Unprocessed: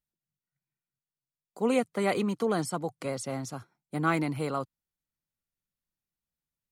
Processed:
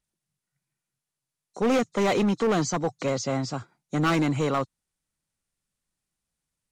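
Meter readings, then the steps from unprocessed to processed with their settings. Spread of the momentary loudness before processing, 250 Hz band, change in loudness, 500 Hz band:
11 LU, +5.0 dB, +4.5 dB, +4.5 dB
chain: knee-point frequency compression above 3.5 kHz 1.5:1; overload inside the chain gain 26.5 dB; trim +7.5 dB

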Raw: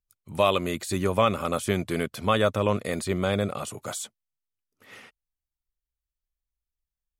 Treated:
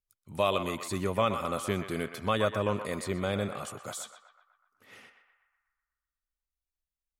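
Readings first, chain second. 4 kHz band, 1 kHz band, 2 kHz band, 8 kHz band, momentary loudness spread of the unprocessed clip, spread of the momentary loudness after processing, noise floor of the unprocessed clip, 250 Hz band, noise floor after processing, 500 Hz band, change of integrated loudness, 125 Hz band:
-5.0 dB, -4.5 dB, -4.5 dB, -5.5 dB, 11 LU, 11 LU, under -85 dBFS, -5.5 dB, under -85 dBFS, -5.0 dB, -5.0 dB, -5.5 dB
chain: band-passed feedback delay 124 ms, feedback 63%, band-pass 1.3 kHz, level -7 dB; trim -5.5 dB

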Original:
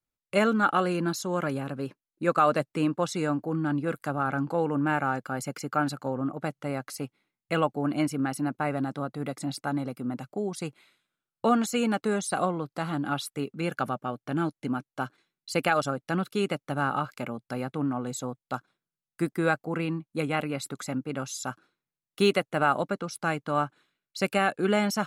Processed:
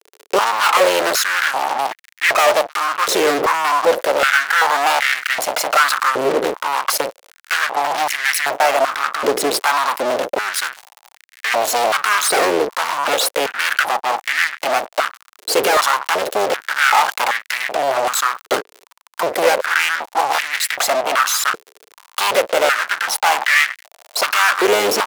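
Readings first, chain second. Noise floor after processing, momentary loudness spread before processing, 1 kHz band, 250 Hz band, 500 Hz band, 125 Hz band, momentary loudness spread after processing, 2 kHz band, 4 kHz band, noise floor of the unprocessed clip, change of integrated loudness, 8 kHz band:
-55 dBFS, 10 LU, +13.5 dB, -3.0 dB, +11.0 dB, -13.0 dB, 7 LU, +17.0 dB, +18.5 dB, under -85 dBFS, +12.0 dB, +17.5 dB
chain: octave divider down 1 oct, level +1 dB; peaking EQ 8.2 kHz -8.5 dB 1.1 oct; speakerphone echo 120 ms, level -30 dB; half-wave rectifier; treble shelf 3.7 kHz +7 dB; rotary cabinet horn 0.8 Hz; fuzz box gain 51 dB, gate -53 dBFS; crackle 67 per s -25 dBFS; step-sequenced high-pass 2.6 Hz 430–1900 Hz; trim -1 dB

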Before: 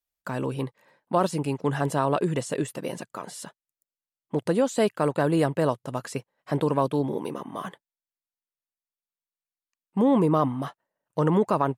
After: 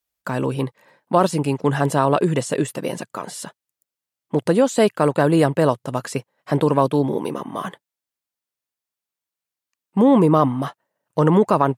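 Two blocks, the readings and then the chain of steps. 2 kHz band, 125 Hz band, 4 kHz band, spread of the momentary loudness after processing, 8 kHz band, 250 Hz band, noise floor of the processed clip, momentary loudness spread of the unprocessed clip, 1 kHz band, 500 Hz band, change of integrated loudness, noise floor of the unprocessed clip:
+6.5 dB, +6.5 dB, +6.5 dB, 15 LU, +6.5 dB, +6.5 dB, under -85 dBFS, 15 LU, +6.5 dB, +6.5 dB, +6.5 dB, under -85 dBFS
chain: high-pass 45 Hz; trim +6.5 dB

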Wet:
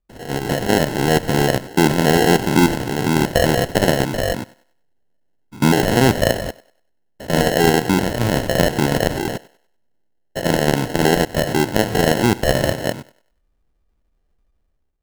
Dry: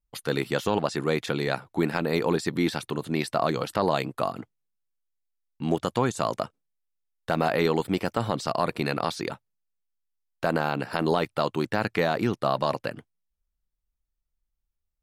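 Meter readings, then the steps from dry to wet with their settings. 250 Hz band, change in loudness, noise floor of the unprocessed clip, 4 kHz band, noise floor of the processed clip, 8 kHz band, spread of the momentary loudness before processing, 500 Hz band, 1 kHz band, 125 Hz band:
+10.5 dB, +9.5 dB, -81 dBFS, +11.5 dB, -66 dBFS, +16.5 dB, 6 LU, +8.5 dB, +7.0 dB, +11.5 dB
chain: spectrogram pixelated in time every 100 ms; in parallel at -1 dB: peak limiter -18.5 dBFS, peak gain reduction 8.5 dB; on the sum: sample-and-hold 37×; level rider gain up to 11 dB; thinning echo 97 ms, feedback 34%, high-pass 330 Hz, level -19.5 dB

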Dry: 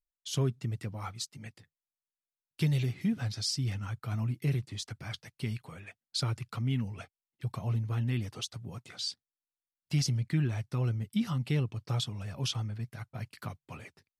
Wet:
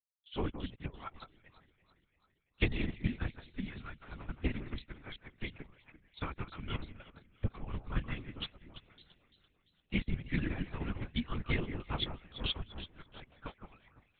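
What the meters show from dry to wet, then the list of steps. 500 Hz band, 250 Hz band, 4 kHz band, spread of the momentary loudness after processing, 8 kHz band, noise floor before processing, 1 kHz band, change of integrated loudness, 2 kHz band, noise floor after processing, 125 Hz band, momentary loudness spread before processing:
-2.5 dB, -5.0 dB, -5.0 dB, 18 LU, under -35 dB, under -85 dBFS, -1.5 dB, -6.0 dB, +2.5 dB, -77 dBFS, -10.0 dB, 13 LU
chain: dynamic bell 1.9 kHz, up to +4 dB, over -52 dBFS, Q 1.3; harmonic-percussive split harmonic -9 dB; on a send: echo whose repeats swap between lows and highs 169 ms, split 2 kHz, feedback 75%, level -4 dB; on the sum: LPC vocoder at 8 kHz whisper; upward expansion 2.5:1, over -46 dBFS; trim +7 dB

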